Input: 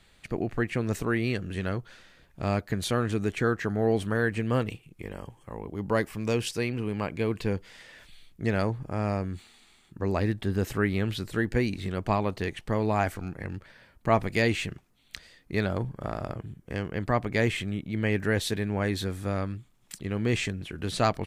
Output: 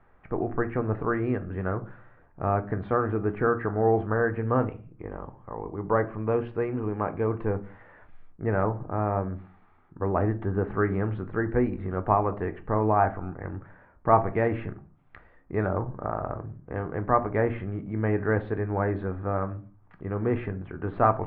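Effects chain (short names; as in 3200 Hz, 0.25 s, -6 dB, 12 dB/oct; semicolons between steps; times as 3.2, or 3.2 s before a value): inverse Chebyshev low-pass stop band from 6700 Hz, stop band 80 dB; tilt shelf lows -7 dB, about 880 Hz; reverb RT60 0.40 s, pre-delay 3 ms, DRR 8.5 dB; gain +5.5 dB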